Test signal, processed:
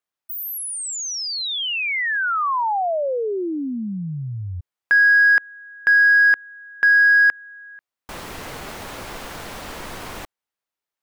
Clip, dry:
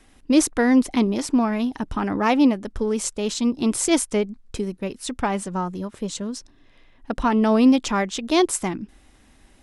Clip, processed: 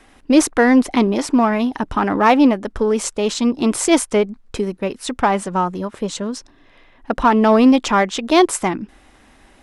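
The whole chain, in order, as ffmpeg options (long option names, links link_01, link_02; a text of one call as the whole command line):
ffmpeg -i in.wav -filter_complex "[0:a]equalizer=frequency=1000:width=0.32:gain=8.5,asplit=2[link_01][link_02];[link_02]volume=14.5dB,asoftclip=hard,volume=-14.5dB,volume=-9.5dB[link_03];[link_01][link_03]amix=inputs=2:normalize=0,volume=-1.5dB" out.wav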